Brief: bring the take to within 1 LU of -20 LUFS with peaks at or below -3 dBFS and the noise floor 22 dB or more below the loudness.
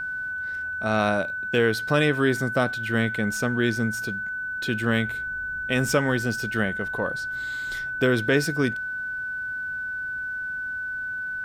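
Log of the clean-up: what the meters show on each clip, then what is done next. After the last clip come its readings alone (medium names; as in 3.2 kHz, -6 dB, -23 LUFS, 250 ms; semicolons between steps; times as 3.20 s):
steady tone 1.5 kHz; tone level -28 dBFS; loudness -25.5 LUFS; peak level -7.5 dBFS; loudness target -20.0 LUFS
-> band-stop 1.5 kHz, Q 30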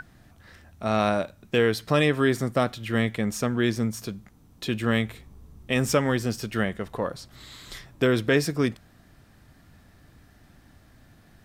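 steady tone not found; loudness -25.5 LUFS; peak level -9.0 dBFS; loudness target -20.0 LUFS
-> trim +5.5 dB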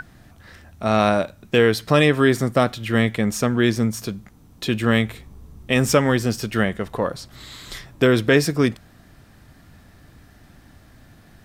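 loudness -20.0 LUFS; peak level -3.5 dBFS; noise floor -51 dBFS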